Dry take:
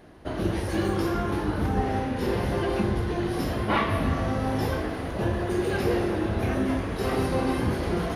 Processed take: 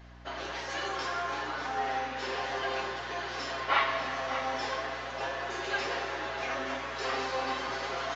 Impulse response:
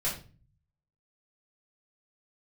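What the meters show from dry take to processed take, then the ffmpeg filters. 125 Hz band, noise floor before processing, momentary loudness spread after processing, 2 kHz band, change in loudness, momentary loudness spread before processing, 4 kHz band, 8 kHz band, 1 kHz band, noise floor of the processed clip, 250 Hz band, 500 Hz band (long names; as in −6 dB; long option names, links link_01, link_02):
−22.5 dB, −32 dBFS, 6 LU, +1.5 dB, −6.0 dB, 3 LU, +2.0 dB, −2.5 dB, −1.0 dB, −39 dBFS, −18.5 dB, −8.0 dB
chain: -filter_complex "[0:a]highpass=890,aecho=1:1:7.4:0.71,aeval=exprs='val(0)+0.00316*(sin(2*PI*60*n/s)+sin(2*PI*2*60*n/s)/2+sin(2*PI*3*60*n/s)/3+sin(2*PI*4*60*n/s)/4+sin(2*PI*5*60*n/s)/5)':channel_layout=same,asplit=2[link_01][link_02];[link_02]aecho=0:1:591:0.266[link_03];[link_01][link_03]amix=inputs=2:normalize=0,aresample=16000,aresample=44100"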